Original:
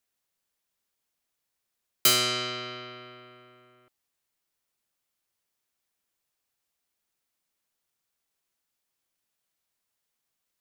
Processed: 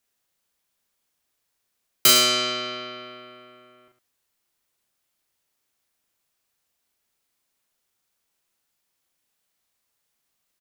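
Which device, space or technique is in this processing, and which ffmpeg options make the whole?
slapback doubling: -filter_complex "[0:a]asplit=3[a][b][c];[b]adelay=37,volume=-4dB[d];[c]adelay=107,volume=-11dB[e];[a][d][e]amix=inputs=3:normalize=0,volume=4dB"

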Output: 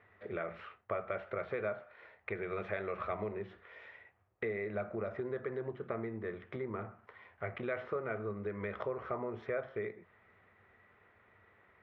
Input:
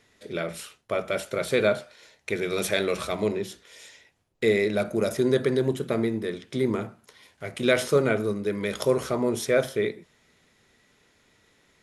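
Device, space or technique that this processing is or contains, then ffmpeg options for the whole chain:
bass amplifier: -af "acompressor=threshold=-34dB:ratio=4,highpass=63,equalizer=f=94:t=q:w=4:g=8,equalizer=f=150:t=q:w=4:g=-9,equalizer=f=270:t=q:w=4:g=-10,equalizer=f=730:t=q:w=4:g=4,equalizer=f=1.2k:t=q:w=4:g=7,equalizer=f=1.9k:t=q:w=4:g=3,lowpass=f=2.2k:w=0.5412,lowpass=f=2.2k:w=1.3066,volume=-2dB"

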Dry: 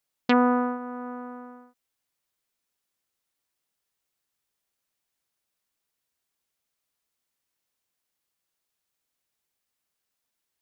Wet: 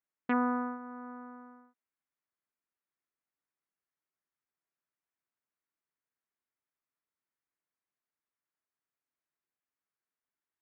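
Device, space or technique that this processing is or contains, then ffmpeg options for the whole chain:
bass cabinet: -af "highpass=81,equalizer=f=89:t=q:w=4:g=-8,equalizer=f=130:t=q:w=4:g=-4,equalizer=f=210:t=q:w=4:g=-4,equalizer=f=510:t=q:w=4:g=-6,equalizer=f=790:t=q:w=4:g=-4,lowpass=f=2.1k:w=0.5412,lowpass=f=2.1k:w=1.3066,volume=-6.5dB"

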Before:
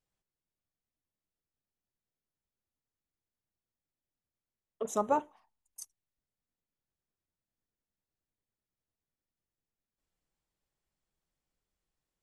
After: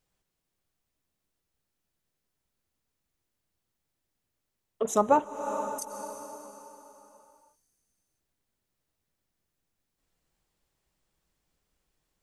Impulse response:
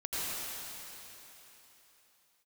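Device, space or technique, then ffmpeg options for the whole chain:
ducked reverb: -filter_complex "[0:a]asplit=3[a][b][c];[1:a]atrim=start_sample=2205[d];[b][d]afir=irnorm=-1:irlink=0[e];[c]apad=whole_len=539273[f];[e][f]sidechaincompress=threshold=-49dB:ratio=6:attack=9.3:release=199,volume=-8.5dB[g];[a][g]amix=inputs=2:normalize=0,volume=6.5dB"

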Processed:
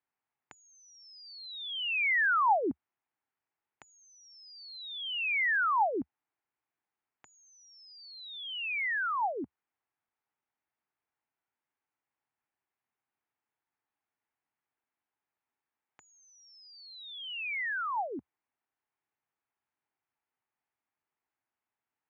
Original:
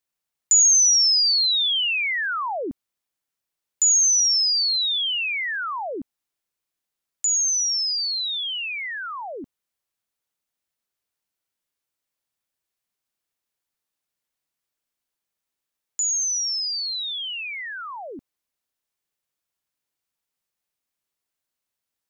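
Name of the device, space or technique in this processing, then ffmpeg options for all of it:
bass amplifier: -af "acompressor=threshold=-23dB:ratio=6,highpass=71,equalizer=f=75:t=q:w=4:g=-7,equalizer=f=180:t=q:w=4:g=-8,equalizer=f=540:t=q:w=4:g=-7,equalizer=f=840:t=q:w=4:g=6,lowpass=f=2.3k:w=0.5412,lowpass=f=2.3k:w=1.3066"

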